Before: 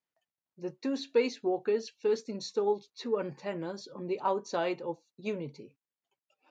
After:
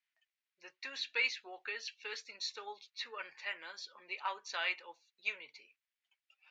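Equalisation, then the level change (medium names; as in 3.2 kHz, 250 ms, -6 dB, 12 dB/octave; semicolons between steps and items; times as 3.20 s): ladder band-pass 2.6 kHz, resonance 35%; +16.0 dB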